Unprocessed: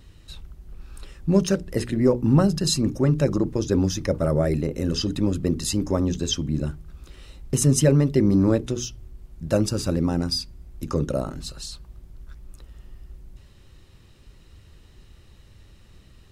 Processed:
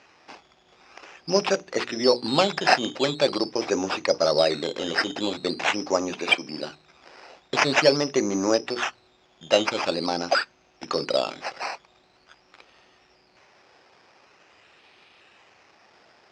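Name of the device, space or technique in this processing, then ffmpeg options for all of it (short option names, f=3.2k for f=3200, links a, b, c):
circuit-bent sampling toy: -filter_complex "[0:a]asettb=1/sr,asplit=3[a][b][c];[a]atrim=end=6.154[d];[b]atrim=start=6.15:end=6.7,asetpts=PTS-STARTPTS,afade=t=in:d=0.004:c=qsin,afade=t=out:st=0.546:d=0.004:c=qsin,highpass=190[e];[c]atrim=start=6.696[f];[d][e]acrossfade=d=0.004:c1=hsin:c2=qsin[g];[g][f]acrossfade=d=0.004:c1=qsin:c2=hsin,acrusher=samples=10:mix=1:aa=0.000001:lfo=1:lforange=6:lforate=0.45,highpass=520,equalizer=f=750:t=q:w=4:g=5,equalizer=f=2.5k:t=q:w=4:g=5,equalizer=f=5.1k:t=q:w=4:g=7,lowpass=f=6k:w=0.5412,lowpass=f=6k:w=1.3066,volume=5dB"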